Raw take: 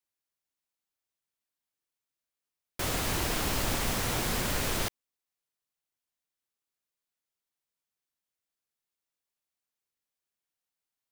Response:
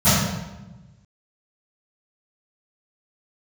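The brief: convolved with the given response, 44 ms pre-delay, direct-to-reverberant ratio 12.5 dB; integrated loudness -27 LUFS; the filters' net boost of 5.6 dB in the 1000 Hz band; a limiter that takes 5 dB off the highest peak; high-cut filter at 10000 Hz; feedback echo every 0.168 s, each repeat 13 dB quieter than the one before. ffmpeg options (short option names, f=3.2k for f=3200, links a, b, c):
-filter_complex "[0:a]lowpass=10k,equalizer=f=1k:t=o:g=7,alimiter=limit=-21dB:level=0:latency=1,aecho=1:1:168|336|504:0.224|0.0493|0.0108,asplit=2[a][b];[1:a]atrim=start_sample=2205,adelay=44[c];[b][c]afir=irnorm=-1:irlink=0,volume=-35dB[d];[a][d]amix=inputs=2:normalize=0,volume=3.5dB"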